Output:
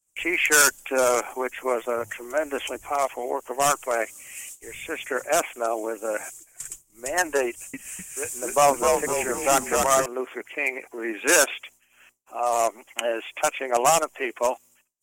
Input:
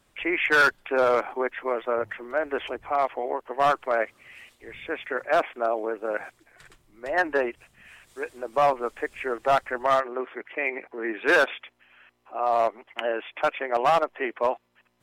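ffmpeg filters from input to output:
ffmpeg -i in.wav -filter_complex "[0:a]agate=range=-33dB:threshold=-50dB:ratio=3:detection=peak,highshelf=frequency=5300:width_type=q:width=3:gain=10,aexciter=amount=2.2:drive=7.2:freq=2400,aphaser=in_gain=1:out_gain=1:delay=3.7:decay=0.26:speed=0.58:type=sinusoidal,asettb=1/sr,asplit=3[link_01][link_02][link_03];[link_01]atrim=end=7.484[link_04];[link_02]atrim=start=7.48:end=10.06,asetpts=PTS-STARTPTS,afade=type=in:duration=0.004:curve=qsin,afade=type=out:start_time=2.576:duration=0.004:curve=qsin,asplit=7[link_05][link_06][link_07][link_08][link_09][link_10][link_11];[link_06]adelay=254,afreqshift=-83,volume=-3dB[link_12];[link_07]adelay=508,afreqshift=-166,volume=-9.6dB[link_13];[link_08]adelay=762,afreqshift=-249,volume=-16.1dB[link_14];[link_09]adelay=1016,afreqshift=-332,volume=-22.7dB[link_15];[link_10]adelay=1270,afreqshift=-415,volume=-29.2dB[link_16];[link_11]adelay=1524,afreqshift=-498,volume=-35.8dB[link_17];[link_05][link_12][link_13][link_14][link_15][link_16][link_17]amix=inputs=7:normalize=0,atrim=end_sample=113778[link_18];[link_03]atrim=start=10.056[link_19];[link_04][link_18]acrossfade=duration=0.004:curve1=hsin:curve2=qsin[link_20];[link_20][link_19]acrossfade=duration=0.004:curve1=qsin:curve2=hsin" out.wav

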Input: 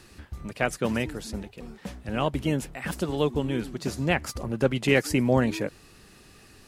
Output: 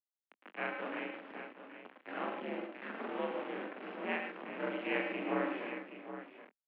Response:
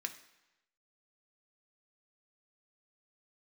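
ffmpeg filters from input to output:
-filter_complex "[0:a]afftfilt=real='re':imag='-im':win_size=4096:overlap=0.75,equalizer=frequency=1400:width_type=o:width=0.57:gain=6.5,bandreject=frequency=60:width_type=h:width=6,bandreject=frequency=120:width_type=h:width=6,bandreject=frequency=180:width_type=h:width=6,bandreject=frequency=240:width_type=h:width=6,bandreject=frequency=300:width_type=h:width=6,bandreject=frequency=360:width_type=h:width=6,bandreject=frequency=420:width_type=h:width=6,acrusher=bits=3:dc=4:mix=0:aa=0.000001,asplit=2[link_01][link_02];[link_02]adelay=22,volume=-13.5dB[link_03];[link_01][link_03]amix=inputs=2:normalize=0,asplit=2[link_04][link_05];[link_05]aecho=0:1:107|111|368|414|774:0.355|0.335|0.141|0.158|0.282[link_06];[link_04][link_06]amix=inputs=2:normalize=0,highpass=frequency=160:width_type=q:width=0.5412,highpass=frequency=160:width_type=q:width=1.307,lowpass=frequency=2700:width_type=q:width=0.5176,lowpass=frequency=2700:width_type=q:width=0.7071,lowpass=frequency=2700:width_type=q:width=1.932,afreqshift=59,volume=-5.5dB"

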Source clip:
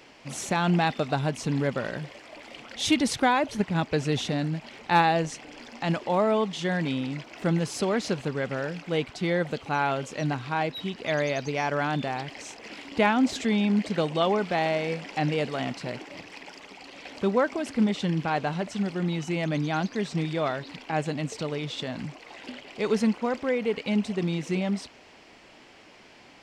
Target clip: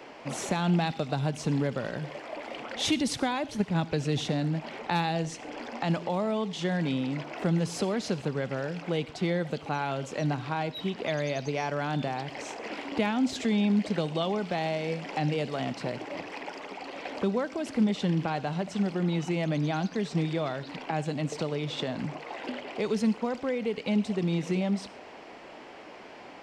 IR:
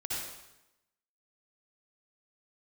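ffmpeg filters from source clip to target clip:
-filter_complex "[0:a]equalizer=frequency=630:width=0.31:gain=13,acrossover=split=190|3000[link_01][link_02][link_03];[link_02]acompressor=threshold=-28dB:ratio=4[link_04];[link_01][link_04][link_03]amix=inputs=3:normalize=0,asplit=2[link_05][link_06];[1:a]atrim=start_sample=2205,afade=type=out:start_time=0.19:duration=0.01,atrim=end_sample=8820[link_07];[link_06][link_07]afir=irnorm=-1:irlink=0,volume=-19dB[link_08];[link_05][link_08]amix=inputs=2:normalize=0,volume=-4.5dB"

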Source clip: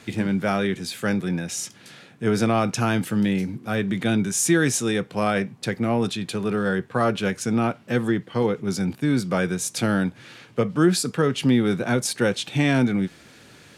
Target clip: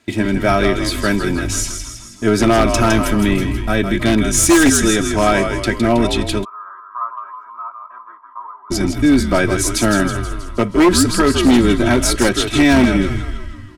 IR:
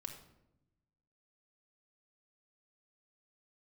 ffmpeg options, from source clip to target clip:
-filter_complex "[0:a]agate=range=-17dB:threshold=-37dB:ratio=16:detection=peak,asplit=8[link_01][link_02][link_03][link_04][link_05][link_06][link_07][link_08];[link_02]adelay=160,afreqshift=-73,volume=-7dB[link_09];[link_03]adelay=320,afreqshift=-146,volume=-12dB[link_10];[link_04]adelay=480,afreqshift=-219,volume=-17.1dB[link_11];[link_05]adelay=640,afreqshift=-292,volume=-22.1dB[link_12];[link_06]adelay=800,afreqshift=-365,volume=-27.1dB[link_13];[link_07]adelay=960,afreqshift=-438,volume=-32.2dB[link_14];[link_08]adelay=1120,afreqshift=-511,volume=-37.2dB[link_15];[link_01][link_09][link_10][link_11][link_12][link_13][link_14][link_15]amix=inputs=8:normalize=0,aeval=exprs='0.473*(cos(1*acos(clip(val(0)/0.473,-1,1)))-cos(1*PI/2))+0.0188*(cos(4*acos(clip(val(0)/0.473,-1,1)))-cos(4*PI/2))':channel_layout=same,asplit=3[link_16][link_17][link_18];[link_16]afade=type=out:start_time=6.43:duration=0.02[link_19];[link_17]asuperpass=centerf=1100:order=4:qfactor=5,afade=type=in:start_time=6.43:duration=0.02,afade=type=out:start_time=8.7:duration=0.02[link_20];[link_18]afade=type=in:start_time=8.7:duration=0.02[link_21];[link_19][link_20][link_21]amix=inputs=3:normalize=0,aecho=1:1:3.1:0.73,aeval=exprs='0.282*(abs(mod(val(0)/0.282+3,4)-2)-1)':channel_layout=same,volume=6.5dB"

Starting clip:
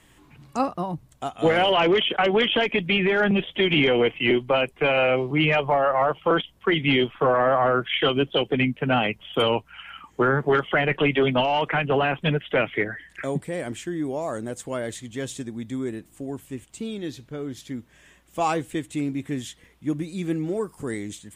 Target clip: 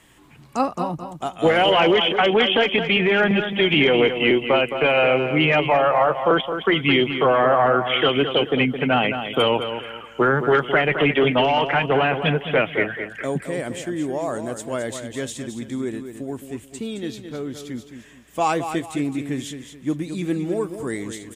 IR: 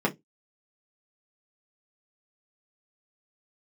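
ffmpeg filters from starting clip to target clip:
-filter_complex "[0:a]lowshelf=frequency=120:gain=-6,asplit=2[link_01][link_02];[link_02]aecho=0:1:216|432|648|864:0.355|0.114|0.0363|0.0116[link_03];[link_01][link_03]amix=inputs=2:normalize=0,volume=3dB"

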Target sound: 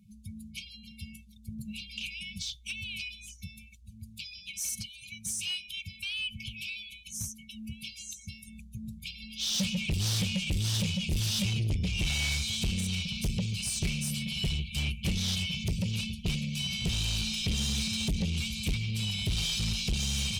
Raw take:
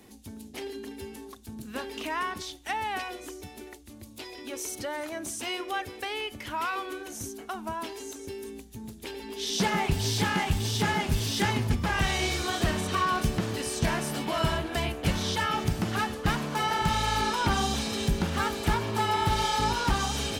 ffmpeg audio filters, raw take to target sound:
ffmpeg -i in.wav -af "afftdn=noise_reduction=22:noise_floor=-49,afftfilt=real='re*(1-between(b*sr/4096,220,2200))':imag='im*(1-between(b*sr/4096,220,2200))':win_size=4096:overlap=0.75,asoftclip=type=tanh:threshold=-29dB,volume=4dB" out.wav

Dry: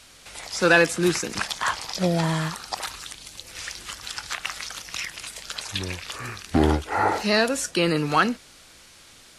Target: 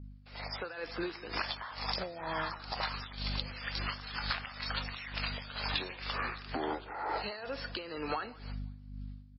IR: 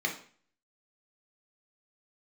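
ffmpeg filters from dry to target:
-filter_complex "[0:a]agate=range=-38dB:threshold=-46dB:ratio=16:detection=peak,highpass=490,aeval=exprs='val(0)+0.00631*(sin(2*PI*50*n/s)+sin(2*PI*2*50*n/s)/2+sin(2*PI*3*50*n/s)/3+sin(2*PI*4*50*n/s)/4+sin(2*PI*5*50*n/s)/5)':channel_layout=same,highshelf=frequency=2700:gain=-10,dynaudnorm=framelen=240:gausssize=7:maxgain=15.5dB,alimiter=limit=-11dB:level=0:latency=1:release=16,acompressor=threshold=-30dB:ratio=16,tremolo=f=2.1:d=0.73,equalizer=frequency=4500:width_type=o:width=0.31:gain=6,asplit=2[link_01][link_02];[link_02]adelay=172,lowpass=frequency=4200:poles=1,volume=-21dB,asplit=2[link_03][link_04];[link_04]adelay=172,lowpass=frequency=4200:poles=1,volume=0.35,asplit=2[link_05][link_06];[link_06]adelay=172,lowpass=frequency=4200:poles=1,volume=0.35[link_07];[link_01][link_03][link_05][link_07]amix=inputs=4:normalize=0" -ar 16000 -c:a libmp3lame -b:a 16k

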